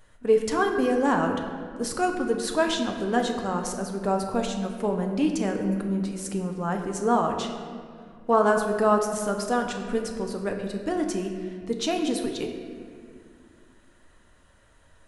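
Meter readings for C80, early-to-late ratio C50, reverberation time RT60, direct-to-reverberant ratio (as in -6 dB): 6.5 dB, 5.5 dB, 2.1 s, 2.5 dB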